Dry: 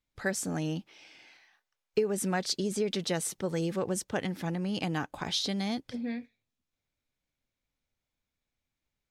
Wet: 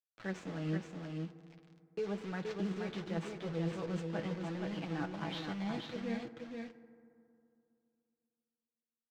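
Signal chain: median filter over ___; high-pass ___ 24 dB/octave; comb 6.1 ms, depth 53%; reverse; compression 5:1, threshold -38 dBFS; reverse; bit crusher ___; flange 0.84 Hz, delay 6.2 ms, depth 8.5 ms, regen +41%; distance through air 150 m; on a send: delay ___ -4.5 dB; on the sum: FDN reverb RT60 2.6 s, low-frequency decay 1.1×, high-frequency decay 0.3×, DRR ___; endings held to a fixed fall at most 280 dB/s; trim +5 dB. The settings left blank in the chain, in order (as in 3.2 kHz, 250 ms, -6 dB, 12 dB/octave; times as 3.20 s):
9 samples, 96 Hz, 8-bit, 475 ms, 12 dB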